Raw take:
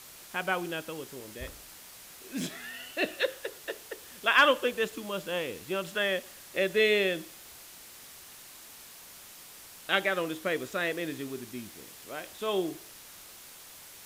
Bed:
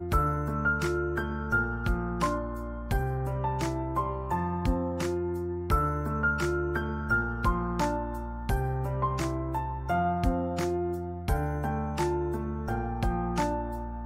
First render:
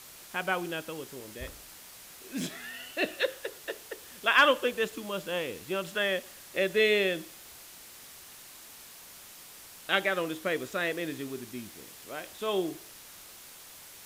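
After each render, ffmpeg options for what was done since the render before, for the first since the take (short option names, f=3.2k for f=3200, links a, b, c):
-af anull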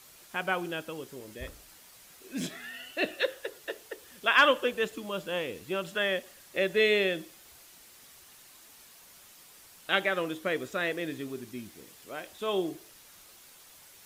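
-af "afftdn=nr=6:nf=-50"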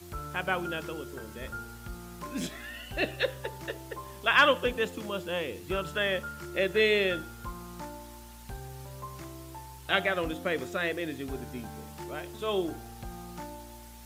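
-filter_complex "[1:a]volume=-13.5dB[a];[0:a][a]amix=inputs=2:normalize=0"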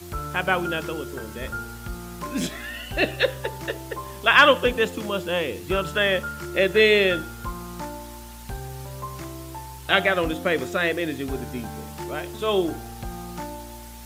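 -af "volume=7.5dB,alimiter=limit=-3dB:level=0:latency=1"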